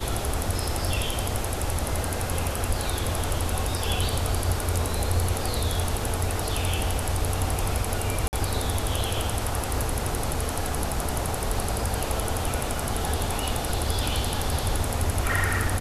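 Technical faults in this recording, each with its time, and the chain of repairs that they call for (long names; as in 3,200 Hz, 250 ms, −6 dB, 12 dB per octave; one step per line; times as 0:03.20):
0:08.28–0:08.33: drop-out 49 ms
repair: repair the gap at 0:08.28, 49 ms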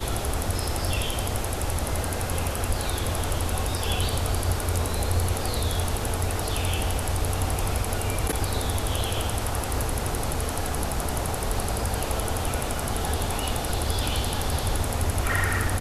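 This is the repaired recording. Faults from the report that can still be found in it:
none of them is left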